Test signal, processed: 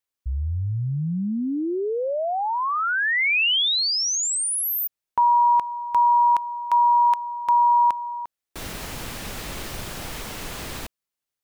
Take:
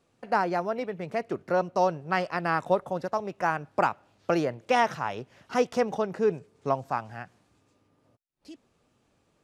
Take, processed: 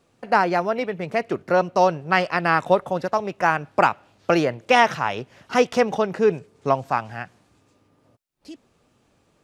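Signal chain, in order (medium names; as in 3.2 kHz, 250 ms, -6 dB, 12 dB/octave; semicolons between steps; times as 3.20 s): dynamic bell 2.7 kHz, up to +5 dB, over -46 dBFS, Q 0.92; trim +6 dB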